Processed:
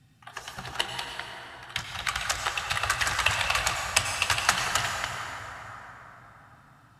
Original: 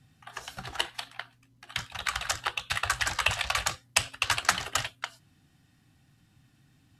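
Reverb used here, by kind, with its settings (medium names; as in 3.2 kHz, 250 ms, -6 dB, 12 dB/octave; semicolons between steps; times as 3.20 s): plate-style reverb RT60 4.5 s, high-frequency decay 0.45×, pre-delay 75 ms, DRR 2 dB; trim +1 dB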